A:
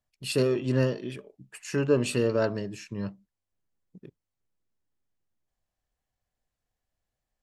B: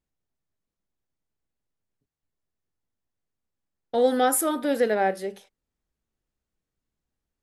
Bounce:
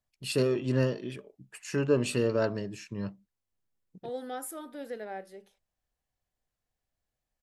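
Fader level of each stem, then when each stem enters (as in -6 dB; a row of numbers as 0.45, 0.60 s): -2.0, -16.5 dB; 0.00, 0.10 s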